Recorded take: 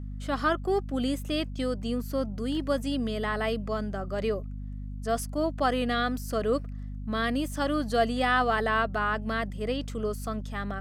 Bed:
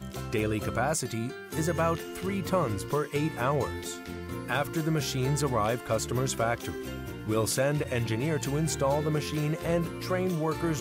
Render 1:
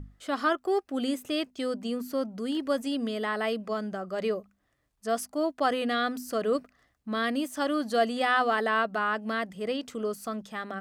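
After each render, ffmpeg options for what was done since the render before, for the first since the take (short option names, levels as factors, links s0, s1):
-af "bandreject=f=50:t=h:w=6,bandreject=f=100:t=h:w=6,bandreject=f=150:t=h:w=6,bandreject=f=200:t=h:w=6,bandreject=f=250:t=h:w=6"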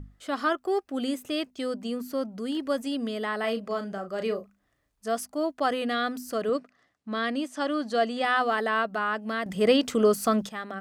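-filter_complex "[0:a]asettb=1/sr,asplit=3[s0][s1][s2];[s0]atrim=end=3.404[s3];[s1]atrim=start=3.4:end=5.08,asetpts=PTS-STARTPTS,afade=t=in:d=0.004:c=qsin,afade=t=out:st=1.676:d=0.004:c=qsin,asplit=2[s4][s5];[s5]adelay=35,volume=0.398[s6];[s4][s6]amix=inputs=2:normalize=0,atrim=end_sample=74088[s7];[s2]atrim=start=5.076[s8];[s3][s7]acrossfade=d=0.004:c1=hsin:c2=qsin[s9];[s9][s8]acrossfade=d=0.004:c1=qsin:c2=hsin,asettb=1/sr,asplit=3[s10][s11][s12];[s10]atrim=end=6.494[s13];[s11]atrim=start=6.49:end=8.25,asetpts=PTS-STARTPTS,afade=t=in:d=0.004:c=qsin,afade=t=out:st=1.756:d=0.004:c=qsin,highpass=150,lowpass=7300[s14];[s12]atrim=start=8.246[s15];[s13][s14]acrossfade=d=0.004:c1=hsin:c2=qsin[s16];[s16][s15]acrossfade=d=0.004:c1=qsin:c2=hsin,asplit=3[s17][s18][s19];[s17]atrim=end=9.462[s20];[s18]atrim=start=9.458:end=10.492,asetpts=PTS-STARTPTS,volume=3.35[s21];[s19]atrim=start=10.488[s22];[s20][s21]acrossfade=d=0.004:c1=hsin:c2=hsin[s23];[s23][s22]acrossfade=d=0.004:c1=hsin:c2=hsin"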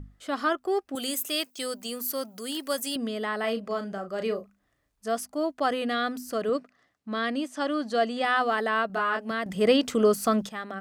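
-filter_complex "[0:a]asettb=1/sr,asplit=3[s0][s1][s2];[s0]atrim=end=0.954[s3];[s1]atrim=start=0.95:end=2.96,asetpts=PTS-STARTPTS,afade=t=in:d=0.004:c=qsin,afade=t=out:st=2.006:d=0.004:c=qsin,aemphasis=mode=production:type=riaa[s4];[s2]atrim=start=2.956[s5];[s3][s4]acrossfade=d=0.004:c1=hsin:c2=qsin[s6];[s6][s5]acrossfade=d=0.004:c1=qsin:c2=hsin,asettb=1/sr,asplit=3[s7][s8][s9];[s7]atrim=end=8.874[s10];[s8]atrim=start=8.87:end=9.31,asetpts=PTS-STARTPTS,afade=t=in:d=0.004:c=qsin,afade=t=out:st=0.436:d=0.004:c=qsin,asplit=2[s11][s12];[s12]adelay=26,volume=0.668[s13];[s11][s13]amix=inputs=2:normalize=0,atrim=end_sample=19404[s14];[s9]atrim=start=9.306[s15];[s10][s14]acrossfade=d=0.004:c1=hsin:c2=qsin[s16];[s16][s15]acrossfade=d=0.004:c1=qsin:c2=hsin"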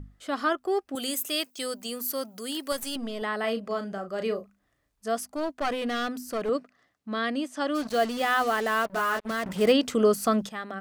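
-filter_complex "[0:a]asettb=1/sr,asplit=3[s0][s1][s2];[s0]atrim=end=2.724[s3];[s1]atrim=start=2.72:end=3.22,asetpts=PTS-STARTPTS,afade=t=in:d=0.004:c=qsin,afade=t=out:st=0.496:d=0.004:c=qsin,aeval=exprs='if(lt(val(0),0),0.447*val(0),val(0))':c=same[s4];[s2]atrim=start=3.216[s5];[s3][s4]acrossfade=d=0.004:c1=hsin:c2=qsin[s6];[s6][s5]acrossfade=d=0.004:c1=qsin:c2=hsin,asettb=1/sr,asplit=3[s7][s8][s9];[s7]atrim=end=5.324[s10];[s8]atrim=start=5.32:end=6.49,asetpts=PTS-STARTPTS,afade=t=in:d=0.004:c=qsin,afade=t=out:st=1.166:d=0.004:c=qsin,aeval=exprs='clip(val(0),-1,0.0398)':c=same[s11];[s9]atrim=start=6.486[s12];[s10][s11]acrossfade=d=0.004:c1=hsin:c2=qsin[s13];[s13][s12]acrossfade=d=0.004:c1=qsin:c2=hsin,asplit=3[s14][s15][s16];[s14]afade=t=out:st=7.74:d=0.02[s17];[s15]acrusher=bits=5:mix=0:aa=0.5,afade=t=in:st=7.74:d=0.02,afade=t=out:st=9.71:d=0.02[s18];[s16]afade=t=in:st=9.71:d=0.02[s19];[s17][s18][s19]amix=inputs=3:normalize=0"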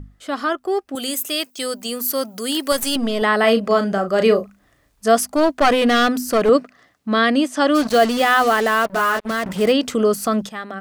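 -filter_complex "[0:a]asplit=2[s0][s1];[s1]alimiter=limit=0.119:level=0:latency=1:release=32,volume=0.891[s2];[s0][s2]amix=inputs=2:normalize=0,dynaudnorm=f=240:g=21:m=3.76"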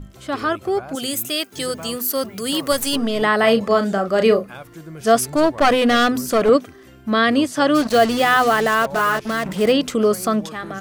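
-filter_complex "[1:a]volume=0.376[s0];[0:a][s0]amix=inputs=2:normalize=0"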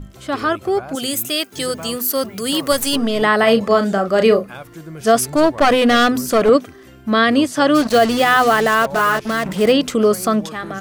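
-af "volume=1.33,alimiter=limit=0.708:level=0:latency=1"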